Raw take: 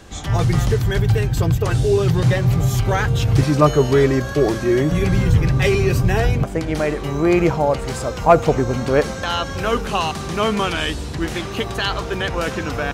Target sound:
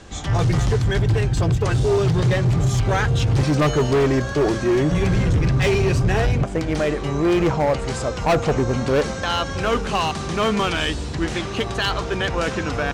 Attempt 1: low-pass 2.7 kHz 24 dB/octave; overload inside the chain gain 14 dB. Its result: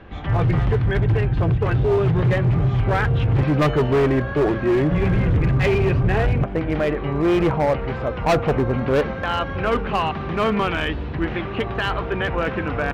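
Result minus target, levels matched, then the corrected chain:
8 kHz band -15.0 dB
low-pass 8.9 kHz 24 dB/octave; overload inside the chain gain 14 dB

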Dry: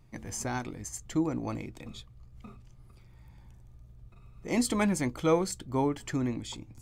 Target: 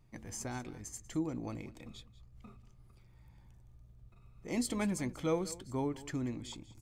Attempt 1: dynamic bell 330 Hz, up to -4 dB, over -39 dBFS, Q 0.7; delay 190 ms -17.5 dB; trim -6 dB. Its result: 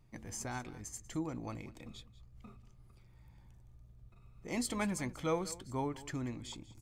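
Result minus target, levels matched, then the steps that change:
1 kHz band +4.0 dB
change: dynamic bell 1.1 kHz, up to -4 dB, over -39 dBFS, Q 0.7

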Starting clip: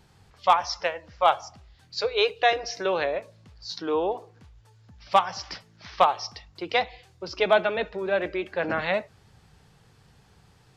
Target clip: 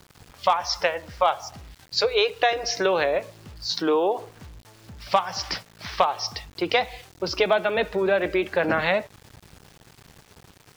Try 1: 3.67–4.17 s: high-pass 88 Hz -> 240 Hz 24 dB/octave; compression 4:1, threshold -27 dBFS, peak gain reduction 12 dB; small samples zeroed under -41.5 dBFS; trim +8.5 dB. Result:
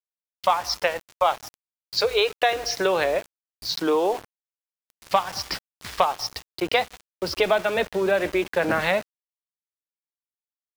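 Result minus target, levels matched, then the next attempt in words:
small samples zeroed: distortion +11 dB
3.67–4.17 s: high-pass 88 Hz -> 240 Hz 24 dB/octave; compression 4:1, threshold -27 dBFS, peak gain reduction 12 dB; small samples zeroed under -53.5 dBFS; trim +8.5 dB

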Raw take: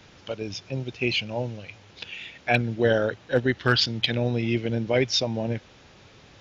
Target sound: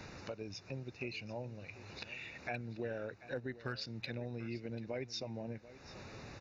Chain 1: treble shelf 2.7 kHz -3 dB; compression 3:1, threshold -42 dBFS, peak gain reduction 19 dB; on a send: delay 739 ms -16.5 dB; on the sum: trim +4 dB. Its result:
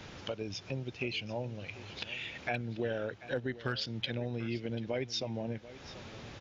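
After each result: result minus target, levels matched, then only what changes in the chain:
compression: peak gain reduction -6 dB; 4 kHz band +2.5 dB
change: compression 3:1, threshold -51 dBFS, peak gain reduction 25 dB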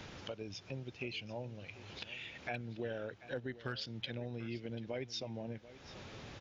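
4 kHz band +2.5 dB
add first: Butterworth band-stop 3.2 kHz, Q 3.8

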